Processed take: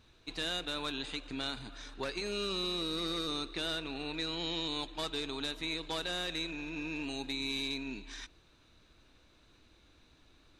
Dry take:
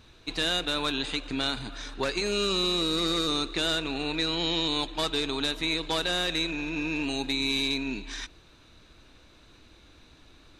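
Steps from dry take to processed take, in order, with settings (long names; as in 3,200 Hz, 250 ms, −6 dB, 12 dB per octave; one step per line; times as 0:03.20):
0:02.04–0:04.14: notch filter 7,100 Hz, Q 5.9
level −8.5 dB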